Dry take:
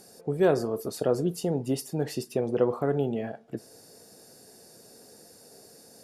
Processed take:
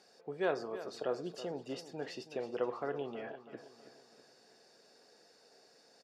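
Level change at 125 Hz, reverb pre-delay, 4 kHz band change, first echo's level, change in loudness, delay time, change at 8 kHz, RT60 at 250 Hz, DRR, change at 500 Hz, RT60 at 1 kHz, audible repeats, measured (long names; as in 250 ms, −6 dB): −20.0 dB, no reverb audible, −6.5 dB, −13.5 dB, −11.5 dB, 324 ms, −16.5 dB, no reverb audible, no reverb audible, −11.0 dB, no reverb audible, 4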